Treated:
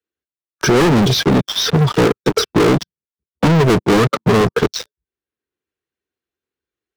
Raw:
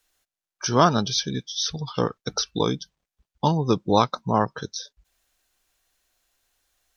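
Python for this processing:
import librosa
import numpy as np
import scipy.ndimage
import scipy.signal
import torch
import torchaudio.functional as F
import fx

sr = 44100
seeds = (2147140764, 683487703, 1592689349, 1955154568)

p1 = fx.spec_quant(x, sr, step_db=15)
p2 = scipy.signal.sosfilt(scipy.signal.butter(4, 69.0, 'highpass', fs=sr, output='sos'), p1)
p3 = fx.low_shelf_res(p2, sr, hz=520.0, db=7.5, q=3.0)
p4 = fx.rider(p3, sr, range_db=4, speed_s=2.0)
p5 = p3 + (p4 * 10.0 ** (0.5 / 20.0))
p6 = fx.leveller(p5, sr, passes=3)
p7 = fx.bass_treble(p6, sr, bass_db=-3, treble_db=-15)
p8 = fx.leveller(p7, sr, passes=5)
p9 = fx.band_squash(p8, sr, depth_pct=40)
y = p9 * 10.0 ** (-16.0 / 20.0)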